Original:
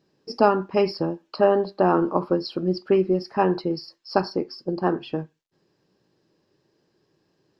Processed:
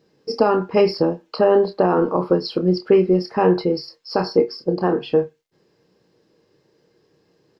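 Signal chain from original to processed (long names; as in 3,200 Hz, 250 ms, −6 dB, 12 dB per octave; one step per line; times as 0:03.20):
double-tracking delay 28 ms −8.5 dB
brickwall limiter −11.5 dBFS, peak gain reduction 9.5 dB
hollow resonant body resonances 470/2,100 Hz, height 12 dB, ringing for 100 ms
level +4.5 dB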